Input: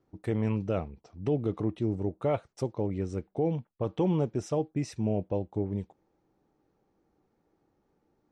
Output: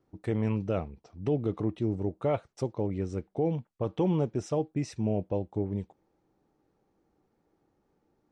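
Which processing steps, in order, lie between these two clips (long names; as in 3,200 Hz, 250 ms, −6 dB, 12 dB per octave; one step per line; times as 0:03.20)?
low-pass filter 9,700 Hz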